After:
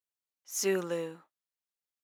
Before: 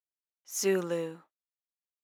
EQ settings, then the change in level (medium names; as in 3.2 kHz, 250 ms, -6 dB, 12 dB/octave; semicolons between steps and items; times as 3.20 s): bass shelf 440 Hz -3.5 dB; 0.0 dB